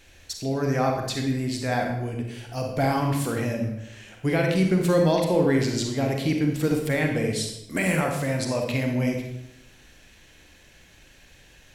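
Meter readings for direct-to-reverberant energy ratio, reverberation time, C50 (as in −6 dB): 2.0 dB, 0.85 s, 3.5 dB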